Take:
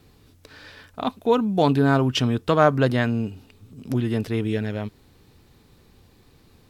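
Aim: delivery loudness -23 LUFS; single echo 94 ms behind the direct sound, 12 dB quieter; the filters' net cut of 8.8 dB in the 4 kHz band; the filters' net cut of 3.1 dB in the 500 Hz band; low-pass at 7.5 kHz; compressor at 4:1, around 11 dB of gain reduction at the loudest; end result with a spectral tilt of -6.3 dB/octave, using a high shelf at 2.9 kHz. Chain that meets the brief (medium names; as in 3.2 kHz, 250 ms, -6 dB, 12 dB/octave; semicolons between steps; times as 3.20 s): low-pass 7.5 kHz; peaking EQ 500 Hz -3.5 dB; treble shelf 2.9 kHz -5 dB; peaking EQ 4 kHz -8.5 dB; compression 4:1, threshold -28 dBFS; delay 94 ms -12 dB; trim +9 dB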